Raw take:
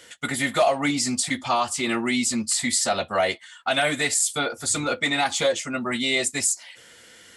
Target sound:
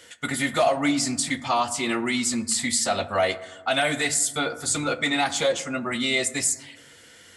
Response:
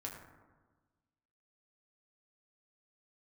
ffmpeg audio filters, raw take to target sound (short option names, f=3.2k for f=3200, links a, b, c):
-filter_complex "[0:a]asplit=2[a][b];[1:a]atrim=start_sample=2205,lowshelf=f=75:g=9[c];[b][c]afir=irnorm=-1:irlink=0,volume=-6.5dB[d];[a][d]amix=inputs=2:normalize=0,volume=-3dB"